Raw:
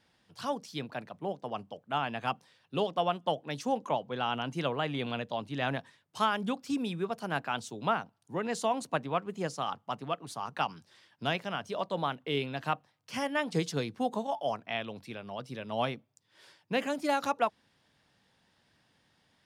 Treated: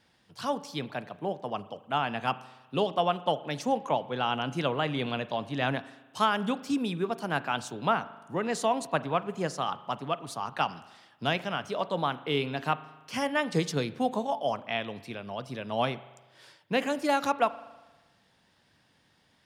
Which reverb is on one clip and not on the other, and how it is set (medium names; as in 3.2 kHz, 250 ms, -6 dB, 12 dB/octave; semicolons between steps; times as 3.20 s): spring tank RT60 1.2 s, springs 39 ms, chirp 35 ms, DRR 15.5 dB; trim +3 dB